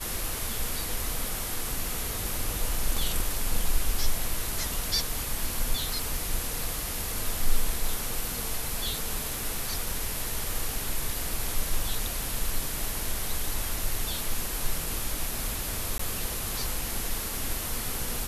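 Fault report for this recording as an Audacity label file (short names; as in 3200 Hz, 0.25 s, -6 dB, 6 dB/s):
15.980000	15.990000	gap 14 ms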